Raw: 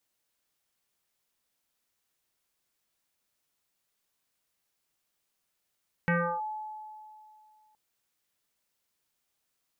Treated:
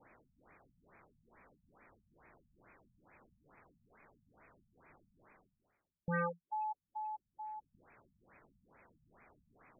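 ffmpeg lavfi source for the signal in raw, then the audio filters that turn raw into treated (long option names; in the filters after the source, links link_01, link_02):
-f lavfi -i "aevalsrc='0.0708*pow(10,-3*t/2.47)*sin(2*PI*859*t+3.6*clip(1-t/0.33,0,1)*sin(2*PI*0.4*859*t))':duration=1.67:sample_rate=44100"
-af "areverse,acompressor=mode=upward:threshold=-32dB:ratio=2.5,areverse,asoftclip=type=tanh:threshold=-32dB,afftfilt=real='re*lt(b*sr/1024,210*pow(2600/210,0.5+0.5*sin(2*PI*2.3*pts/sr)))':imag='im*lt(b*sr/1024,210*pow(2600/210,0.5+0.5*sin(2*PI*2.3*pts/sr)))':win_size=1024:overlap=0.75"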